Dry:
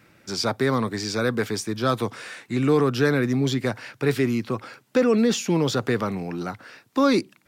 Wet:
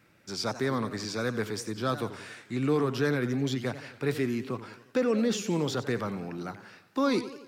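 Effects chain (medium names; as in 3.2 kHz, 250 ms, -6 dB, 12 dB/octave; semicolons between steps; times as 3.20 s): modulated delay 89 ms, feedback 55%, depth 195 cents, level -13.5 dB; trim -7 dB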